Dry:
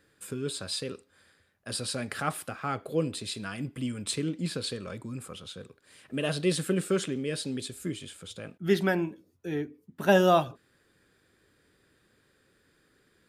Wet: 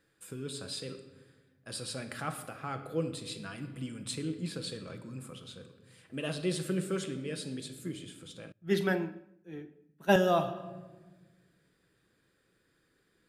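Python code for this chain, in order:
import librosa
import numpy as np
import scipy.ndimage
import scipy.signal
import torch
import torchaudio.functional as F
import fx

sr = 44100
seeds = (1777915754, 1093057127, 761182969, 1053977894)

y = fx.room_shoebox(x, sr, seeds[0], volume_m3=940.0, walls='mixed', distance_m=0.71)
y = fx.band_widen(y, sr, depth_pct=100, at=(8.52, 10.16))
y = y * librosa.db_to_amplitude(-6.5)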